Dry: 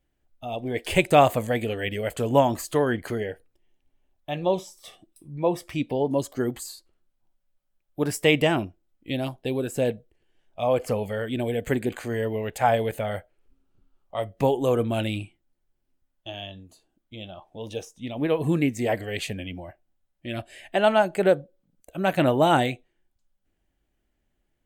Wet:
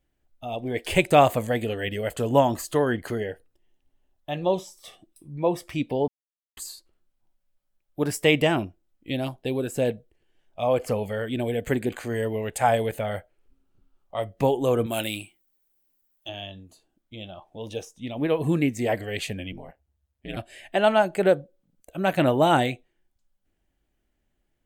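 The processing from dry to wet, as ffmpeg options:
-filter_complex "[0:a]asettb=1/sr,asplit=3[a][b][c];[a]atrim=end=1.494[d];[b]atrim=start=1.49:end=4.62,asetpts=PTS-STARTPTS,afade=t=in:d=0.004:c=qsin,afade=t=out:st=3.126:d=0.004:c=qsin,bandreject=f=2.3k:w=12[e];[c]atrim=start=4.616[f];[d][e]acrossfade=d=0.004:c1=hsin:c2=qsin[g];[g][f]acrossfade=d=0.004:c1=qsin:c2=hsin,asettb=1/sr,asplit=3[h][i][j];[h]atrim=end=12.154[k];[i]atrim=start=12.15:end=12.87,asetpts=PTS-STARTPTS,afade=t=in:d=0.004:c=qsin,afade=t=out:st=0.716:d=0.004:c=qsin,equalizer=f=8.8k:t=o:w=0.68:g=8.5[l];[j]atrim=start=12.866[m];[k][l]acrossfade=d=0.004:c1=hsin:c2=qsin[n];[n][m]acrossfade=d=0.004:c1=qsin:c2=hsin,asettb=1/sr,asplit=3[o][p][q];[o]atrim=end=14.864[r];[p]atrim=start=14.86:end=16.29,asetpts=PTS-STARTPTS,afade=t=in:d=0.004:c=qsin,afade=t=out:st=1.426:d=0.004:c=qsin,aemphasis=mode=production:type=bsi[s];[q]atrim=start=16.286[t];[r][s]acrossfade=d=0.004:c1=hsin:c2=qsin[u];[u][t]acrossfade=d=0.004:c1=qsin:c2=hsin,asettb=1/sr,asplit=3[v][w][x];[v]atrim=end=19.524[y];[w]atrim=start=19.52:end=20.37,asetpts=PTS-STARTPTS,afade=t=in:d=0.004:c=qsin,afade=t=out:st=0.846:d=0.004:c=qsin,aeval=exprs='val(0)*sin(2*PI*70*n/s)':c=same[z];[x]atrim=start=20.366[aa];[y][z]acrossfade=d=0.004:c1=hsin:c2=qsin[ab];[ab][aa]acrossfade=d=0.004:c1=qsin:c2=hsin,asplit=3[ac][ad][ae];[ac]atrim=end=6.08,asetpts=PTS-STARTPTS,afade=t=out:st=6.076:d=0.004:c=hsin[af];[ad]atrim=start=6.08:end=6.57,asetpts=PTS-STARTPTS,volume=0[ag];[ae]atrim=start=6.57,asetpts=PTS-STARTPTS,afade=t=in:d=0.004:c=hsin[ah];[af][ag][ah]concat=n=3:v=0:a=1"

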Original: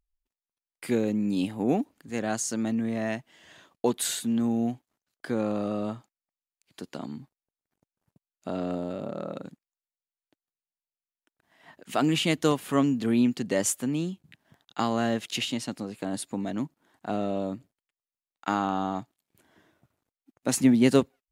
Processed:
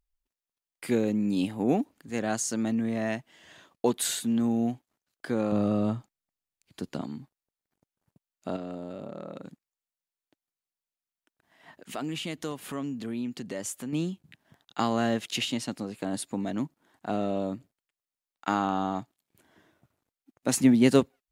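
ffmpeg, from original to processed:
-filter_complex "[0:a]asettb=1/sr,asplit=3[a][b][c];[a]atrim=end=5.524[d];[b]atrim=start=5.52:end=7.02,asetpts=PTS-STARTPTS,afade=t=in:d=0.004:c=qsin,afade=t=out:st=1.496:d=0.004:c=qsin,lowshelf=f=200:g=11.5[e];[c]atrim=start=7.016[f];[d][e]acrossfade=d=0.004:c1=hsin:c2=qsin[g];[g][f]acrossfade=d=0.004:c1=qsin:c2=hsin,asettb=1/sr,asplit=3[h][i][j];[h]atrim=end=8.564[k];[i]atrim=start=8.56:end=13.93,asetpts=PTS-STARTPTS,afade=t=in:d=0.004:c=qsin,afade=t=out:st=5.366:d=0.004:c=qsin,acompressor=threshold=-38dB:ratio=2:attack=3.2:release=140:knee=1:detection=peak[l];[j]atrim=start=13.926[m];[k][l]acrossfade=d=0.004:c1=hsin:c2=qsin[n];[n][m]acrossfade=d=0.004:c1=qsin:c2=hsin"

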